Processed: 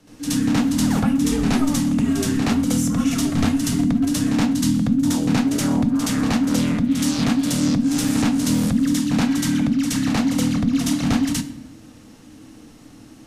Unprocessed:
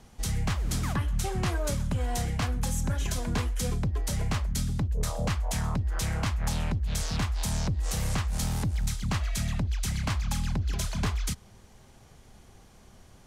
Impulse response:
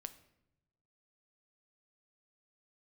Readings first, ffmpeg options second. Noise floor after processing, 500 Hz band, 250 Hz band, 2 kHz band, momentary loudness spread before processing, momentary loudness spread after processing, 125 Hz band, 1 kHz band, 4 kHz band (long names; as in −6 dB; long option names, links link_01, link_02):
−45 dBFS, +7.5 dB, +19.5 dB, +7.5 dB, 1 LU, 1 LU, +3.5 dB, +6.5 dB, +8.5 dB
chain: -filter_complex "[0:a]afreqshift=-330,asplit=2[link_01][link_02];[1:a]atrim=start_sample=2205,asetrate=37044,aresample=44100,adelay=72[link_03];[link_02][link_03]afir=irnorm=-1:irlink=0,volume=11.5dB[link_04];[link_01][link_04]amix=inputs=2:normalize=0"